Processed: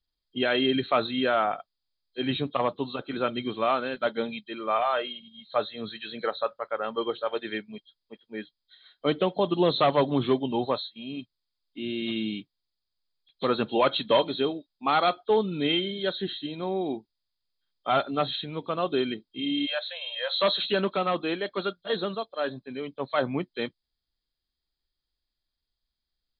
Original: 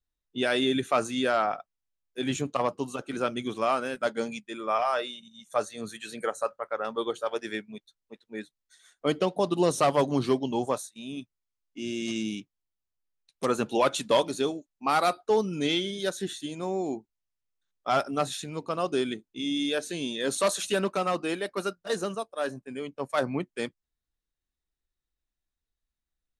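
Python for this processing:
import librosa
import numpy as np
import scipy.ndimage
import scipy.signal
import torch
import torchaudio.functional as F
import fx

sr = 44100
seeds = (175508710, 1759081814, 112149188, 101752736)

y = fx.freq_compress(x, sr, knee_hz=3100.0, ratio=4.0)
y = fx.brickwall_highpass(y, sr, low_hz=490.0, at=(19.65, 20.41), fade=0.02)
y = y * 10.0 ** (1.0 / 20.0)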